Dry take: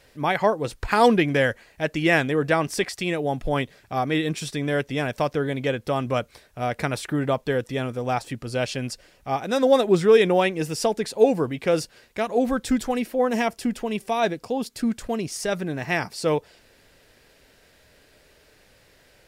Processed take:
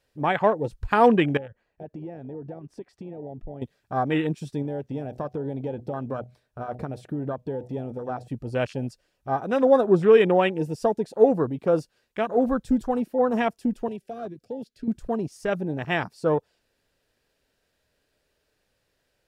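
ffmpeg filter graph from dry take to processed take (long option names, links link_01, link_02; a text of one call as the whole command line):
ffmpeg -i in.wav -filter_complex "[0:a]asettb=1/sr,asplit=3[link_01][link_02][link_03];[link_01]atrim=end=1.374[link_04];[link_02]atrim=start=1.37:end=3.62,asetpts=PTS-STARTPTS,afade=type=in:duration=0.004:curve=qsin,afade=type=out:start_time=2.246:duration=0.004:curve=qsin,lowpass=frequency=1300:poles=1,acompressor=threshold=-34dB:ratio=5:attack=3.2:release=140:knee=1:detection=peak[link_05];[link_03]atrim=start=3.616[link_06];[link_04][link_05]acrossfade=duration=0.004:curve1=hsin:curve2=qsin[link_07];[link_07][link_06]acrossfade=duration=0.004:curve1=qsin:curve2=hsin,asettb=1/sr,asplit=3[link_08][link_09][link_10];[link_08]atrim=end=4.624[link_11];[link_09]atrim=start=4.62:end=8.28,asetpts=PTS-STARTPTS,afade=type=in:duration=0.004:curve=qsin,afade=type=out:start_time=3.656:duration=0.004:curve=qsin,highshelf=frequency=4900:gain=-5.5,acompressor=threshold=-25dB:ratio=6:attack=3.2:release=140:knee=1:detection=peak,bandreject=frequency=123.6:width_type=h:width=4,bandreject=frequency=247.2:width_type=h:width=4,bandreject=frequency=370.8:width_type=h:width=4,bandreject=frequency=494.4:width_type=h:width=4,bandreject=frequency=618:width_type=h:width=4,bandreject=frequency=741.6:width_type=h:width=4[link_12];[link_10]atrim=start=8.276[link_13];[link_11][link_12]acrossfade=duration=0.004:curve1=hsin:curve2=qsin[link_14];[link_14][link_13]acrossfade=duration=0.004:curve1=qsin:curve2=hsin,asettb=1/sr,asplit=3[link_15][link_16][link_17];[link_15]atrim=end=13.884[link_18];[link_16]atrim=start=13.88:end=14.88,asetpts=PTS-STARTPTS,afade=type=in:duration=0.004:curve=qsin,afade=type=out:start_time=0.996:duration=0.004:curve=qsin,acrossover=split=150|480|5000[link_19][link_20][link_21][link_22];[link_19]acompressor=threshold=-49dB:ratio=3[link_23];[link_20]acompressor=threshold=-40dB:ratio=3[link_24];[link_21]acompressor=threshold=-33dB:ratio=3[link_25];[link_22]acompressor=threshold=-57dB:ratio=3[link_26];[link_23][link_24][link_25][link_26]amix=inputs=4:normalize=0,asoftclip=type=hard:threshold=-25dB,asuperstop=centerf=990:order=4:qfactor=1.4[link_27];[link_17]atrim=start=14.876[link_28];[link_18][link_27]acrossfade=duration=0.004:curve1=hsin:curve2=qsin[link_29];[link_29][link_28]acrossfade=duration=0.004:curve1=qsin:curve2=hsin,afwtdn=0.0282,equalizer=frequency=2100:width=7.4:gain=-6" out.wav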